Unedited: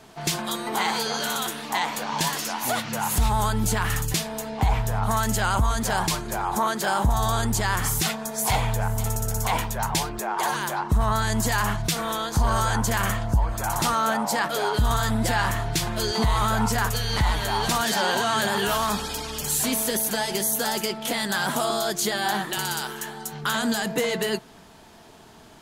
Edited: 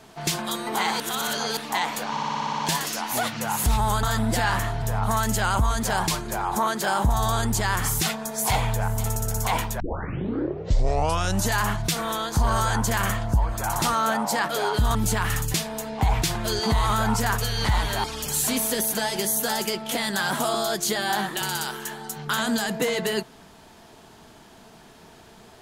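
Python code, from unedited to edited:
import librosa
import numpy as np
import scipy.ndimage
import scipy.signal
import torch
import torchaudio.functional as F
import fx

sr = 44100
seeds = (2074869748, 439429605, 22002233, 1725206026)

y = fx.edit(x, sr, fx.reverse_span(start_s=1.0, length_s=0.57),
    fx.stutter(start_s=2.11, slice_s=0.06, count=9),
    fx.swap(start_s=3.55, length_s=1.27, other_s=14.95, other_length_s=0.79),
    fx.tape_start(start_s=9.8, length_s=1.77),
    fx.cut(start_s=17.56, length_s=1.64), tone=tone)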